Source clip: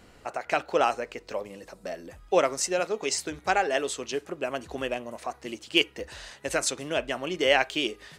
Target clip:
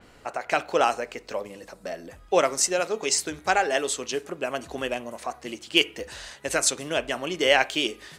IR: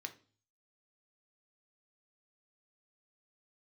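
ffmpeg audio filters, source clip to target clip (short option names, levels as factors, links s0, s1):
-filter_complex "[0:a]asplit=2[s0][s1];[1:a]atrim=start_sample=2205,asetrate=27342,aresample=44100[s2];[s1][s2]afir=irnorm=-1:irlink=0,volume=0.335[s3];[s0][s3]amix=inputs=2:normalize=0,adynamicequalizer=threshold=0.0112:dfrequency=4700:dqfactor=0.7:tfrequency=4700:tqfactor=0.7:attack=5:release=100:ratio=0.375:range=2.5:mode=boostabove:tftype=highshelf"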